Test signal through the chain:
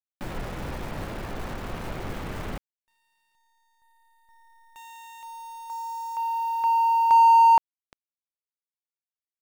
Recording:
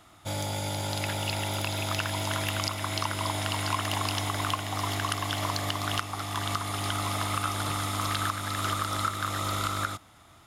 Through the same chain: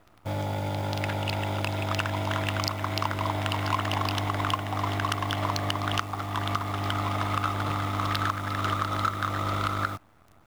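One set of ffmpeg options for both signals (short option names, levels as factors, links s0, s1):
-af "adynamicsmooth=sensitivity=2.5:basefreq=1500,acrusher=bits=9:dc=4:mix=0:aa=0.000001,volume=1.41"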